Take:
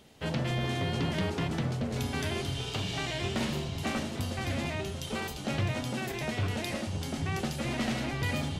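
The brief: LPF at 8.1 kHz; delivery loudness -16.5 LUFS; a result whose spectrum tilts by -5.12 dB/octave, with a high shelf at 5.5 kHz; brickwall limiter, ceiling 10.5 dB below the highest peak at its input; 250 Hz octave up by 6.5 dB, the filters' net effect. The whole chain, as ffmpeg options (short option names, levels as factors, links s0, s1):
-af "lowpass=8100,equalizer=f=250:t=o:g=8,highshelf=f=5500:g=4,volume=8.41,alimiter=limit=0.398:level=0:latency=1"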